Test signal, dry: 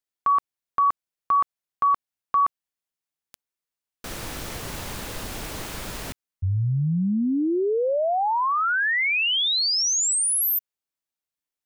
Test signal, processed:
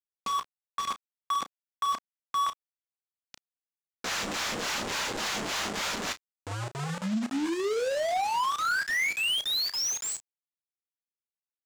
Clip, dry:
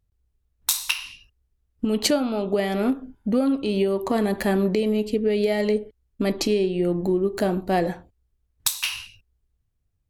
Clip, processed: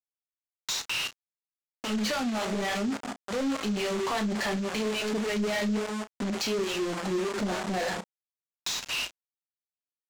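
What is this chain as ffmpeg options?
-filter_complex "[0:a]equalizer=f=210:t=o:w=0.41:g=14.5,bandreject=f=213.5:t=h:w=4,bandreject=f=427:t=h:w=4,bandreject=f=640.5:t=h:w=4,bandreject=f=854:t=h:w=4,bandreject=f=1067.5:t=h:w=4,bandreject=f=1281:t=h:w=4,bandreject=f=1494.5:t=h:w=4,bandreject=f=1708:t=h:w=4,bandreject=f=1921.5:t=h:w=4,acrossover=split=540[s0][s1];[s0]aeval=exprs='val(0)*(1-1/2+1/2*cos(2*PI*3.5*n/s))':c=same[s2];[s1]aeval=exprs='val(0)*(1-1/2-1/2*cos(2*PI*3.5*n/s))':c=same[s3];[s2][s3]amix=inputs=2:normalize=0,asplit=2[s4][s5];[s5]acompressor=threshold=0.0251:ratio=10:attack=1.5:release=59:knee=1:detection=peak,volume=0.841[s6];[s4][s6]amix=inputs=2:normalize=0,lowshelf=f=310:g=-9.5,flanger=delay=2:depth=9.1:regen=-41:speed=0.6:shape=sinusoidal,aresample=16000,acrusher=bits=6:mix=0:aa=0.000001,aresample=44100,asoftclip=type=tanh:threshold=0.0631,asplit=2[s7][s8];[s8]highpass=f=720:p=1,volume=17.8,asoftclip=type=tanh:threshold=0.0631[s9];[s7][s9]amix=inputs=2:normalize=0,lowpass=f=5900:p=1,volume=0.501,asplit=2[s10][s11];[s11]adelay=33,volume=0.251[s12];[s10][s12]amix=inputs=2:normalize=0"

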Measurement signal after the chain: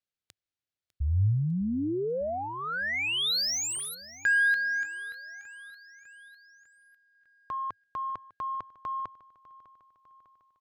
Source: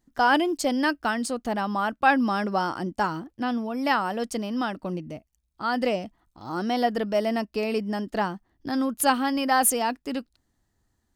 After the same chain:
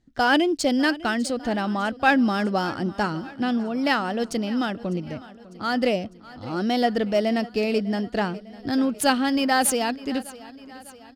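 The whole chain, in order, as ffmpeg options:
-af "equalizer=f=100:t=o:w=0.67:g=7,equalizer=f=1000:t=o:w=0.67:g=-8,equalizer=f=4000:t=o:w=0.67:g=3,adynamicsmooth=sensitivity=7.5:basefreq=5800,aecho=1:1:601|1202|1803|2404|3005:0.112|0.064|0.0365|0.0208|0.0118,volume=1.5"

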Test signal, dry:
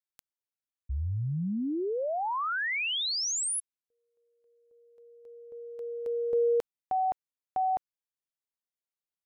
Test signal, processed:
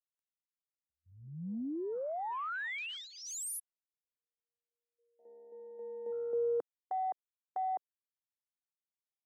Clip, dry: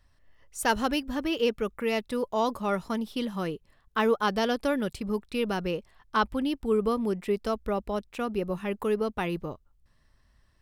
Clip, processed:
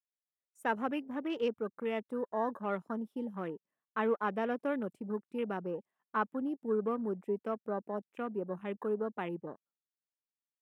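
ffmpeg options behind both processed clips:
-af "highpass=f=180:w=0.5412,highpass=f=180:w=1.3066,equalizer=f=4300:t=o:w=0.8:g=-13,agate=range=0.158:threshold=0.00141:ratio=16:release=383:detection=peak,afwtdn=0.01,volume=0.473"

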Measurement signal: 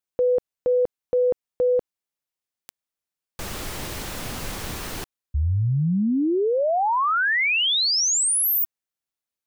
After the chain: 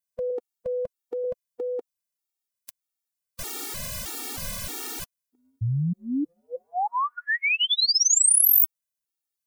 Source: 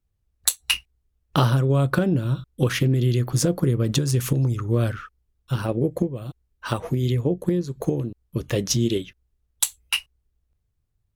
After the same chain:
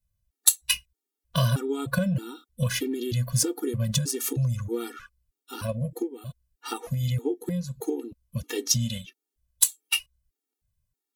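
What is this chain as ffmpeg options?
-af "highshelf=f=4400:g=11,afftfilt=real='re*gt(sin(2*PI*1.6*pts/sr)*(1-2*mod(floor(b*sr/1024/240),2)),0)':imag='im*gt(sin(2*PI*1.6*pts/sr)*(1-2*mod(floor(b*sr/1024/240),2)),0)':win_size=1024:overlap=0.75,volume=0.708"

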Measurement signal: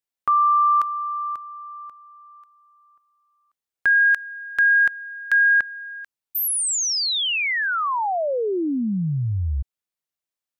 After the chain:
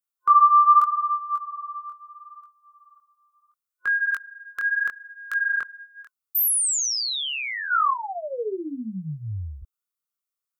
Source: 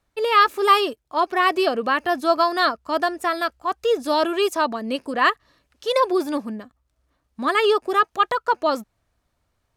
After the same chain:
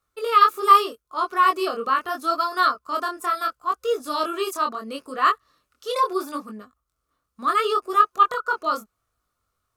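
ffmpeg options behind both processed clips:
-af "superequalizer=7b=1.58:10b=3.55,flanger=delay=19:depth=7.1:speed=0.75,crystalizer=i=2:c=0,volume=0.501"

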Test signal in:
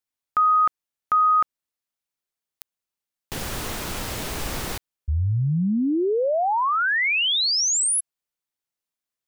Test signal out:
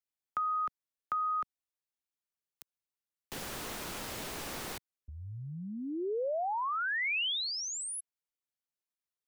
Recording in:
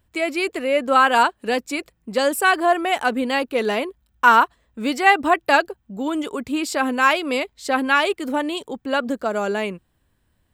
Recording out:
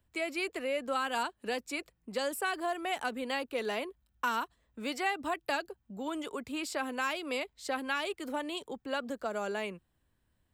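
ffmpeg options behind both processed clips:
-filter_complex "[0:a]acrossover=split=150|380|3100[s0][s1][s2][s3];[s0]acompressor=threshold=0.00708:ratio=4[s4];[s1]acompressor=threshold=0.0141:ratio=4[s5];[s2]acompressor=threshold=0.0708:ratio=4[s6];[s3]acompressor=threshold=0.0316:ratio=4[s7];[s4][s5][s6][s7]amix=inputs=4:normalize=0,volume=0.355"

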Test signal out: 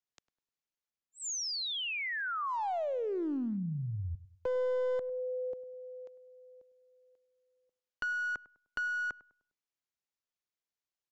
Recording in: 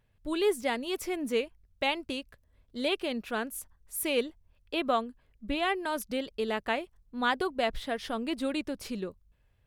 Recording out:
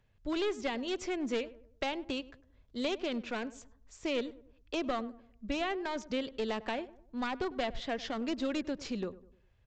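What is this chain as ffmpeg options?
-filter_complex "[0:a]acrossover=split=290|770[s0][s1][s2];[s0]acompressor=threshold=0.0178:ratio=4[s3];[s1]acompressor=threshold=0.02:ratio=4[s4];[s2]acompressor=threshold=0.0178:ratio=4[s5];[s3][s4][s5]amix=inputs=3:normalize=0,aresample=16000,aeval=exprs='clip(val(0),-1,0.0266)':c=same,aresample=44100,asplit=2[s6][s7];[s7]adelay=101,lowpass=f=1200:p=1,volume=0.15,asplit=2[s8][s9];[s9]adelay=101,lowpass=f=1200:p=1,volume=0.41,asplit=2[s10][s11];[s11]adelay=101,lowpass=f=1200:p=1,volume=0.41,asplit=2[s12][s13];[s13]adelay=101,lowpass=f=1200:p=1,volume=0.41[s14];[s6][s8][s10][s12][s14]amix=inputs=5:normalize=0"

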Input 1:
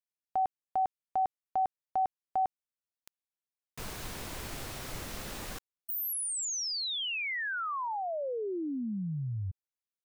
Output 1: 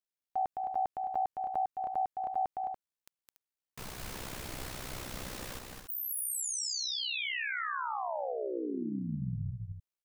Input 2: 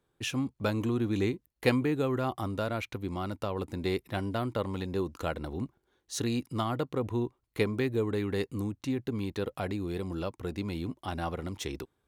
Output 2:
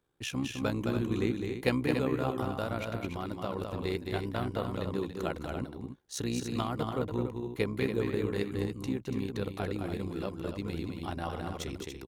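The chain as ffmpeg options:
-af "aecho=1:1:212.8|285.7:0.562|0.398,tremolo=f=63:d=0.621"

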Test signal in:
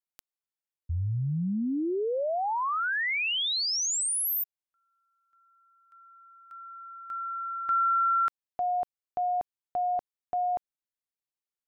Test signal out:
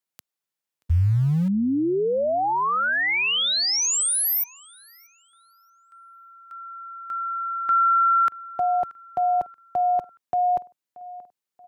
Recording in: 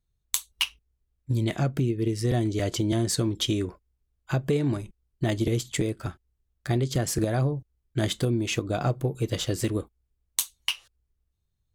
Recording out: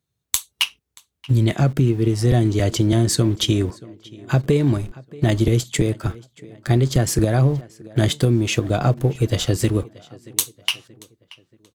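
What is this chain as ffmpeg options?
-filter_complex "[0:a]lowshelf=f=78:g=10.5,acrossover=split=110[s0][s1];[s0]aeval=exprs='val(0)*gte(abs(val(0)),0.00631)':c=same[s2];[s1]asplit=2[s3][s4];[s4]adelay=630,lowpass=f=3800:p=1,volume=0.1,asplit=2[s5][s6];[s6]adelay=630,lowpass=f=3800:p=1,volume=0.44,asplit=2[s7][s8];[s8]adelay=630,lowpass=f=3800:p=1,volume=0.44[s9];[s3][s5][s7][s9]amix=inputs=4:normalize=0[s10];[s2][s10]amix=inputs=2:normalize=0,volume=2"

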